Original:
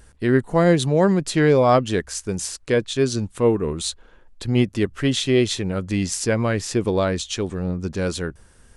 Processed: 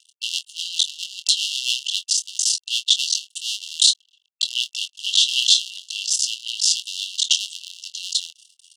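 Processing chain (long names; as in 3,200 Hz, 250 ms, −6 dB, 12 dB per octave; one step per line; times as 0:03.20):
sub-harmonics by changed cycles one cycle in 3, muted
noise gate with hold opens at −42 dBFS
high-shelf EQ 4,300 Hz +7 dB
in parallel at +3 dB: downward compressor, threshold −25 dBFS, peak gain reduction 13 dB
on the sum: hard clipping −7.5 dBFS, distortion −20 dB
rotating-speaker cabinet horn 7.5 Hz, later 1 Hz, at 0:03.07
dead-zone distortion −41.5 dBFS
linear-phase brick-wall high-pass 2,700 Hz
high-frequency loss of the air 100 metres
double-tracking delay 24 ms −9.5 dB
boost into a limiter +14 dB
level −1.5 dB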